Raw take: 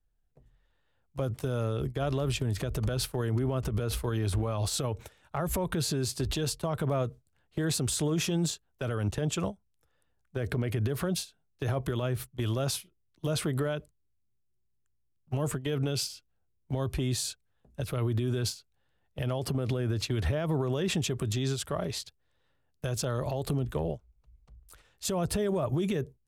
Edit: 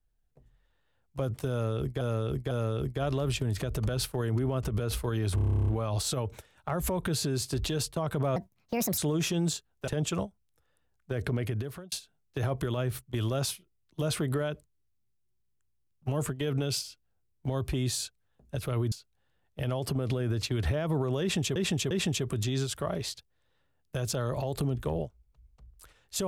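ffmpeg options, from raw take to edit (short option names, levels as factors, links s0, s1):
-filter_complex "[0:a]asplit=21[s0][s1][s2][s3][s4][s5][s6][s7][s8][s9][s10][s11][s12][s13][s14][s15][s16][s17][s18][s19][s20];[s0]atrim=end=2.012[s21];[s1]atrim=start=1.508:end=2.012[s22];[s2]atrim=start=1.508:end=4.382[s23];[s3]atrim=start=4.348:end=4.382[s24];[s4]atrim=start=4.348:end=4.382[s25];[s5]atrim=start=4.348:end=4.382[s26];[s6]atrim=start=4.348:end=4.382[s27];[s7]atrim=start=4.348:end=4.382[s28];[s8]atrim=start=4.348:end=4.382[s29];[s9]atrim=start=4.348:end=4.382[s30];[s10]atrim=start=4.348:end=4.382[s31];[s11]atrim=start=4.348:end=4.382[s32];[s12]atrim=start=4.348:end=4.382[s33];[s13]atrim=start=4.348:end=7.034[s34];[s14]atrim=start=7.03:end=7.95,asetpts=PTS-STARTPTS,asetrate=65709,aresample=44100[s35];[s15]atrim=start=7.946:end=8.852[s36];[s16]atrim=start=9.128:end=11.17,asetpts=PTS-STARTPTS,afade=t=out:st=1.532:d=0.51[s37];[s17]atrim=start=11.17:end=18.172,asetpts=PTS-STARTPTS,afade=t=in:d=0.004:c=hsin[s38];[s18]atrim=start=18.508:end=21.152[s39];[s19]atrim=start=20.798:end=21.152[s40];[s20]atrim=start=20.798[s41];[s21][s22]acrossfade=d=0.004:c1=hsin:c2=hsin[s42];[s42][s23]acrossfade=d=0.004:c1=hsin:c2=hsin[s43];[s43][s24]acrossfade=d=0.004:c1=hsin:c2=hsin[s44];[s44][s25]acrossfade=d=0.004:c1=hsin:c2=hsin[s45];[s45][s26]acrossfade=d=0.004:c1=hsin:c2=hsin[s46];[s46][s27]acrossfade=d=0.004:c1=hsin:c2=hsin[s47];[s47][s28]acrossfade=d=0.004:c1=hsin:c2=hsin[s48];[s48][s29]acrossfade=d=0.004:c1=hsin:c2=hsin[s49];[s49][s30]acrossfade=d=0.004:c1=hsin:c2=hsin[s50];[s50][s31]acrossfade=d=0.004:c1=hsin:c2=hsin[s51];[s51][s32]acrossfade=d=0.004:c1=hsin:c2=hsin[s52];[s52][s33]acrossfade=d=0.004:c1=hsin:c2=hsin[s53];[s53][s34]acrossfade=d=0.004:c1=hsin:c2=hsin[s54];[s54][s35]acrossfade=d=0.004:c1=hsin:c2=hsin[s55];[s55][s36]acrossfade=d=0.004:c1=hsin:c2=hsin[s56];[s37][s38]concat=n=2:v=0:a=1[s57];[s56][s57]acrossfade=d=0.004:c1=hsin:c2=hsin[s58];[s58][s39]acrossfade=d=0.004:c1=hsin:c2=hsin[s59];[s59][s40]acrossfade=d=0.004:c1=hsin:c2=hsin[s60];[s60][s41]acrossfade=d=0.004:c1=hsin:c2=hsin"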